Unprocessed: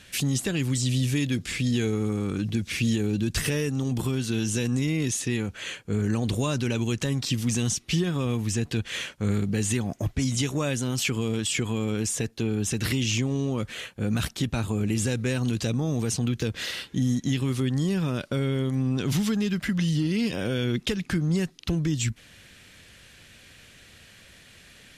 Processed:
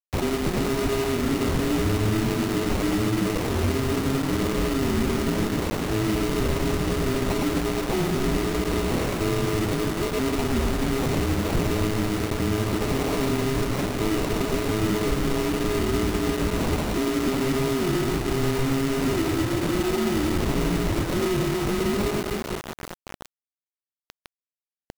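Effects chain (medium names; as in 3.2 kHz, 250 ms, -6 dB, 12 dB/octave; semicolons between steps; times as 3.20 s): on a send: reverse bouncing-ball echo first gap 110 ms, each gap 1.4×, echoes 5; on the sum: frequency inversion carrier 3.8 kHz; distance through air 330 m; in parallel at -1 dB: compression, threshold -36 dBFS, peak gain reduction 10.5 dB; on the sum: sample-and-hold 27×; peak limiter -23.5 dBFS, peak gain reduction 9.5 dB; bass shelf 370 Hz +12 dB; bit crusher 5-bit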